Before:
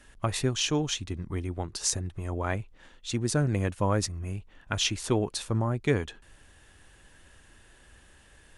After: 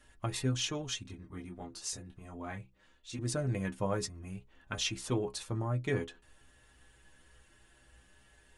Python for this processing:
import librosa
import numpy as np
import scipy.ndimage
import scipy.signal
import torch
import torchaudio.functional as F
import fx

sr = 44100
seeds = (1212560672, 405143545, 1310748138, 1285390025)

y = fx.stiff_resonator(x, sr, f0_hz=61.0, decay_s=0.24, stiffness=0.008)
y = fx.detune_double(y, sr, cents=10, at=(1.03, 3.19))